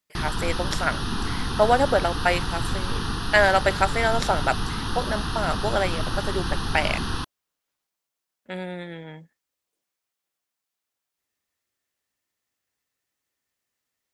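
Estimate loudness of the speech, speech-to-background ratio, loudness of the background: -25.0 LUFS, 4.0 dB, -29.0 LUFS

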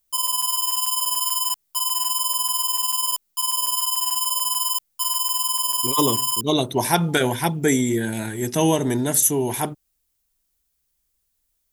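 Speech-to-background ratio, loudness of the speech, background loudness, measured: -1.0 dB, -21.5 LUFS, -20.5 LUFS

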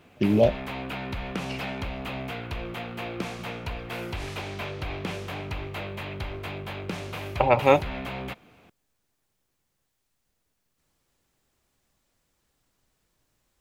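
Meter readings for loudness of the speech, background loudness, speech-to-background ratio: -22.5 LUFS, -34.5 LUFS, 12.0 dB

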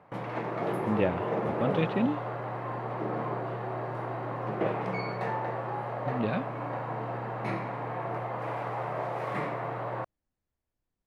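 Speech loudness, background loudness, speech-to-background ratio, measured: -32.0 LUFS, -33.5 LUFS, 1.5 dB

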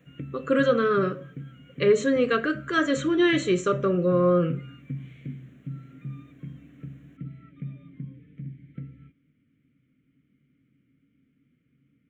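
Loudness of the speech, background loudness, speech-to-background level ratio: -23.5 LUFS, -40.5 LUFS, 17.0 dB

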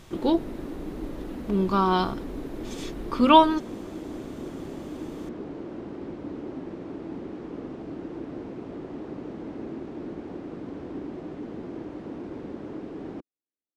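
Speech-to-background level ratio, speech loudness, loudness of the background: 15.5 dB, -22.0 LUFS, -37.5 LUFS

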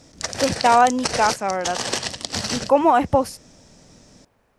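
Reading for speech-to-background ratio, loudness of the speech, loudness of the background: 7.0 dB, -19.5 LUFS, -26.5 LUFS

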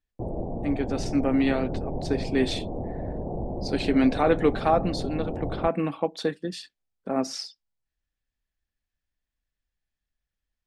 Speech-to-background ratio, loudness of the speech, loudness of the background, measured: 6.5 dB, -27.0 LUFS, -33.5 LUFS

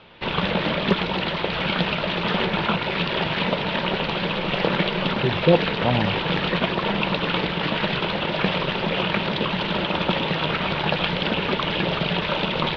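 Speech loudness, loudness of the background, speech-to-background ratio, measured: -23.0 LUFS, -23.0 LUFS, 0.0 dB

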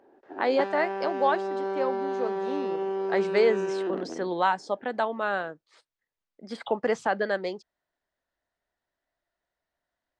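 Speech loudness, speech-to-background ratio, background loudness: -28.5 LUFS, 2.5 dB, -31.0 LUFS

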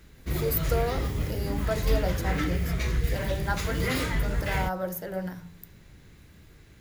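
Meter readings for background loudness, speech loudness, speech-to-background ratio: -30.0 LUFS, -33.0 LUFS, -3.0 dB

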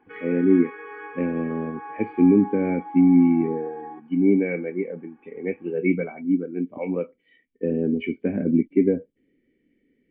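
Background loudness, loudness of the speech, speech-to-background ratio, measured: -38.5 LUFS, -23.0 LUFS, 15.5 dB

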